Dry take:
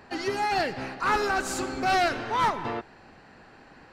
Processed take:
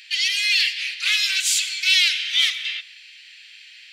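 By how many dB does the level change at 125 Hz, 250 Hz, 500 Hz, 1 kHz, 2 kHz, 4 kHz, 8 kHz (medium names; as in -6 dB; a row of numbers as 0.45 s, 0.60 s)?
under -40 dB, under -40 dB, under -40 dB, under -25 dB, +8.5 dB, +19.0 dB, +14.5 dB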